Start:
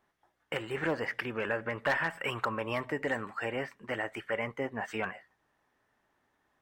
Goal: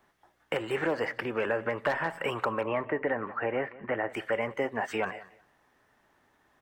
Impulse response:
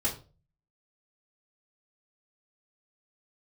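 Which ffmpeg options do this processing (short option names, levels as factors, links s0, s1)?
-filter_complex "[0:a]acrossover=split=310|990[s0][s1][s2];[s0]acompressor=threshold=0.00316:ratio=4[s3];[s1]acompressor=threshold=0.02:ratio=4[s4];[s2]acompressor=threshold=0.00708:ratio=4[s5];[s3][s4][s5]amix=inputs=3:normalize=0,asettb=1/sr,asplit=3[s6][s7][s8];[s6]atrim=end=2.614[s9];[s7]atrim=start=2.61:end=4.1,asetpts=PTS-STARTPTS,afade=t=in:d=0.004:c=qsin,afade=t=out:st=1.486:d=0.004:c=qsin,lowpass=f=2400:w=0.5412,lowpass=f=2400:w=1.3066[s10];[s8]atrim=start=4.096[s11];[s9][s10]acrossfade=d=0.004:c1=hsin:c2=qsin[s12];[s12][s11]acrossfade=d=0.004:c1=qsin:c2=hsin,aecho=1:1:183|366:0.106|0.0212,volume=2.37"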